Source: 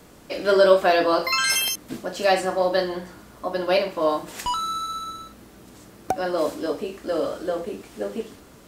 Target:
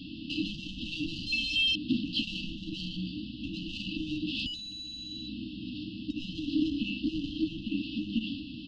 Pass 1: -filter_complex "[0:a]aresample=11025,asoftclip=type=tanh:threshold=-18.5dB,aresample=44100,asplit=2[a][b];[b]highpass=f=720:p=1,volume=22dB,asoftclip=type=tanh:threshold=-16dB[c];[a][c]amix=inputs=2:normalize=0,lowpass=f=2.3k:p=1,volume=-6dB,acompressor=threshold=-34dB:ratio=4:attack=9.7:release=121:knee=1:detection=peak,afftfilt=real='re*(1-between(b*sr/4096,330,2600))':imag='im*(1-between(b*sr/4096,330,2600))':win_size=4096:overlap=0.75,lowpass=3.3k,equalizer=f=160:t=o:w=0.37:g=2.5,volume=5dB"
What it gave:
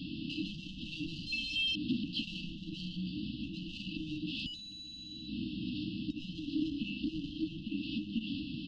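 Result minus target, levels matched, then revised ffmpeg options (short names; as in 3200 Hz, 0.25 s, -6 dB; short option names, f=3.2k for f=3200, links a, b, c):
compressor: peak gain reduction +6 dB; 125 Hz band +3.5 dB
-filter_complex "[0:a]aresample=11025,asoftclip=type=tanh:threshold=-18.5dB,aresample=44100,asplit=2[a][b];[b]highpass=f=720:p=1,volume=22dB,asoftclip=type=tanh:threshold=-16dB[c];[a][c]amix=inputs=2:normalize=0,lowpass=f=2.3k:p=1,volume=-6dB,acompressor=threshold=-26dB:ratio=4:attack=9.7:release=121:knee=1:detection=peak,afftfilt=real='re*(1-between(b*sr/4096,330,2600))':imag='im*(1-between(b*sr/4096,330,2600))':win_size=4096:overlap=0.75,lowpass=3.3k,equalizer=f=160:t=o:w=0.37:g=-5,volume=5dB"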